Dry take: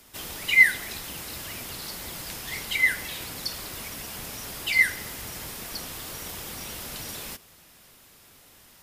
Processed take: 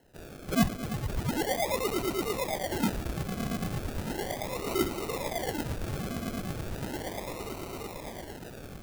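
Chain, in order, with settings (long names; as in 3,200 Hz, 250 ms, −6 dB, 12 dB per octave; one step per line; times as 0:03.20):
on a send: echo that builds up and dies away 113 ms, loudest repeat 8, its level −7.5 dB
on the sum: sample-and-hold swept by an LFO 37×, swing 60% 0.36 Hz
high-shelf EQ 9,500 Hz +6 dB
level −8.5 dB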